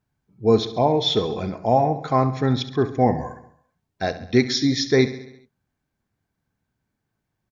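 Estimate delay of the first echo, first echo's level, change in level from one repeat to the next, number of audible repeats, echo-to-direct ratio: 68 ms, -14.0 dB, -4.5 dB, 5, -12.0 dB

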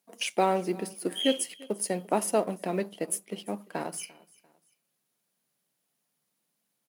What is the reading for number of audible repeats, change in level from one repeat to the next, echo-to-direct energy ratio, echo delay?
2, -8.5 dB, -22.5 dB, 345 ms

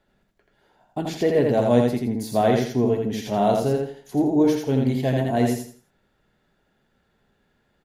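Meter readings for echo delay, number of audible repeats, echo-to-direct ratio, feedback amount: 83 ms, 4, -2.5 dB, 30%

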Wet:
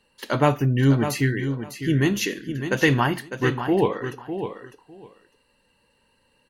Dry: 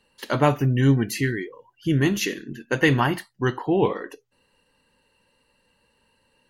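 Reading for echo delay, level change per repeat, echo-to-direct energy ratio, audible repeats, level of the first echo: 603 ms, -16.0 dB, -9.0 dB, 2, -9.0 dB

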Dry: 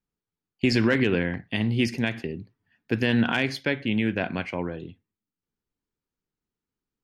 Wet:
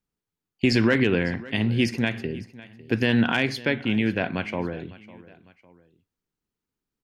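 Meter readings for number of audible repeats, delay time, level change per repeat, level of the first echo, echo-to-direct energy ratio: 2, 553 ms, -7.0 dB, -19.5 dB, -18.5 dB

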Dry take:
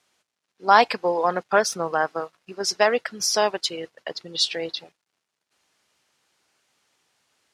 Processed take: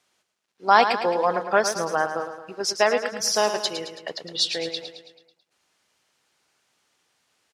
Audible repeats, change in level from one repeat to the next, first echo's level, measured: 5, -5.5 dB, -9.0 dB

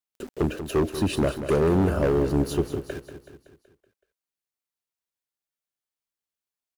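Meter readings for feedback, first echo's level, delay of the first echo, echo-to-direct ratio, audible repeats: 53%, -11.0 dB, 188 ms, -9.5 dB, 5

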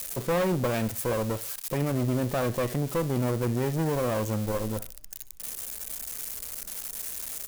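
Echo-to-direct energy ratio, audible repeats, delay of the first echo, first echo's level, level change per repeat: -18.0 dB, 2, 64 ms, -18.5 dB, -9.0 dB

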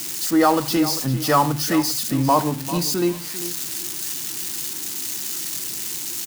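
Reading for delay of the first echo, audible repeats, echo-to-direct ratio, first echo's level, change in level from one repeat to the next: 396 ms, 2, -13.5 dB, -13.5 dB, -14.5 dB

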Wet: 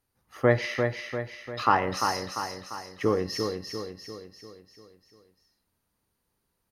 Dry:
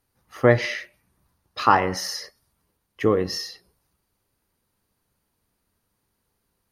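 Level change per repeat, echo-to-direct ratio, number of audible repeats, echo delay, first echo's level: -6.0 dB, -4.0 dB, 6, 346 ms, -5.5 dB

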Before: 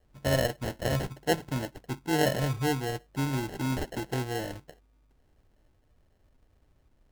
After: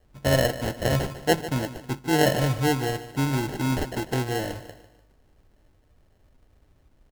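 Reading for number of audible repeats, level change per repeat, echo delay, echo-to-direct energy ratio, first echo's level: 3, -8.0 dB, 148 ms, -13.0 dB, -14.0 dB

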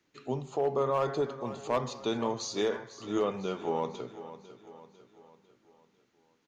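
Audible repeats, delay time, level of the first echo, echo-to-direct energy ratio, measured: 4, 499 ms, -14.0 dB, -13.0 dB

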